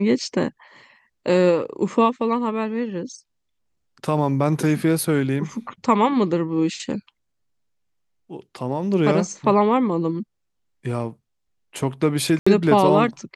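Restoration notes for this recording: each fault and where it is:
12.39–12.46 s: dropout 75 ms

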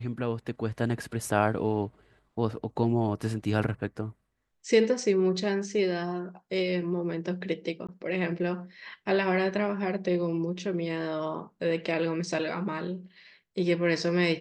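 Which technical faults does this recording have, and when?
7.87–7.89 s: dropout 16 ms

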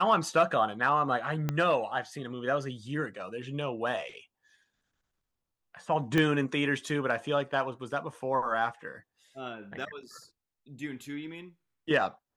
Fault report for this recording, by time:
1.49 s: pop -16 dBFS
6.18 s: pop -14 dBFS

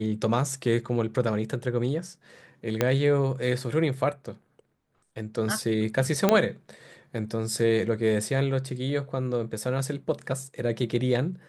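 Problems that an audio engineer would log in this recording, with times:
2.81 s: pop -8 dBFS
6.29 s: pop -6 dBFS

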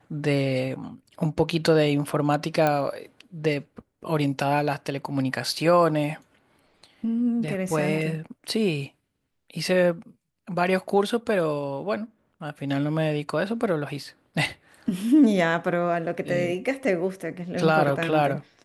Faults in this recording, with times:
2.67 s: pop -10 dBFS

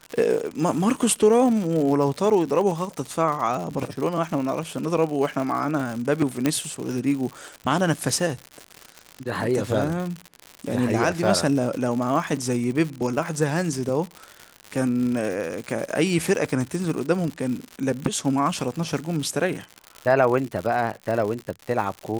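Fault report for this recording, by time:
crackle 130 per s -28 dBFS
6.46 s: pop -7 dBFS

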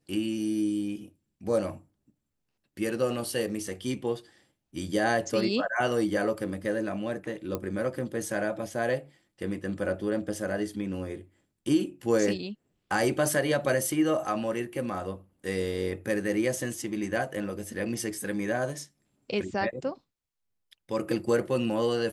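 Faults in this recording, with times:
7.55 s: pop -17 dBFS

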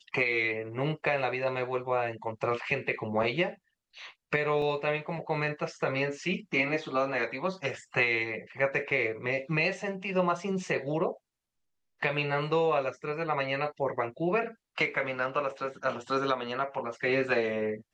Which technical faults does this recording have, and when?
4.62 s: dropout 2.5 ms

